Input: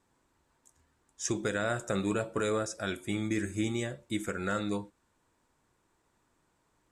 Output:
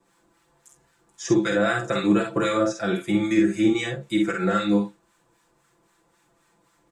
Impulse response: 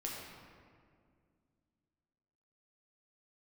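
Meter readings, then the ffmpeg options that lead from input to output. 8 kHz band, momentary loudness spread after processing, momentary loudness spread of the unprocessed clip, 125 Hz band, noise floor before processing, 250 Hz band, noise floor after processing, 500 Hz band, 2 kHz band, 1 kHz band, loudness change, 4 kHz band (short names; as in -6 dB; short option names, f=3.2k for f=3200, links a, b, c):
+1.0 dB, 6 LU, 5 LU, +6.5 dB, -74 dBFS, +12.5 dB, -66 dBFS, +9.0 dB, +8.5 dB, +9.5 dB, +10.0 dB, +8.5 dB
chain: -filter_complex "[0:a]lowshelf=f=79:g=-9.5,aecho=1:1:5.9:0.97,acrossover=split=310|550|5700[a][b][c][d];[d]acompressor=threshold=-60dB:ratio=10[e];[a][b][c][e]amix=inputs=4:normalize=0,acrossover=split=1000[f][g];[f]aeval=exprs='val(0)*(1-0.7/2+0.7/2*cos(2*PI*3.8*n/s))':c=same[h];[g]aeval=exprs='val(0)*(1-0.7/2-0.7/2*cos(2*PI*3.8*n/s))':c=same[i];[h][i]amix=inputs=2:normalize=0,aecho=1:1:49|64:0.562|0.316,volume=8.5dB"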